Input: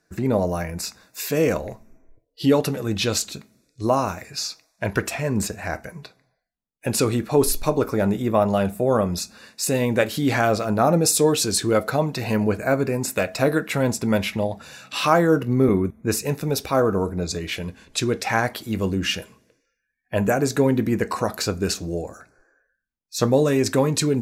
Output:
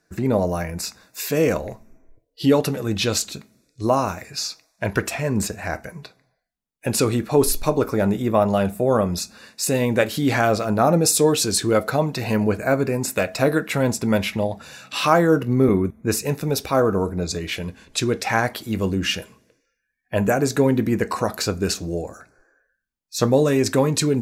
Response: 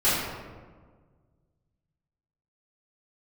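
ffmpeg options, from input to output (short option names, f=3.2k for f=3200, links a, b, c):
-af "volume=1dB"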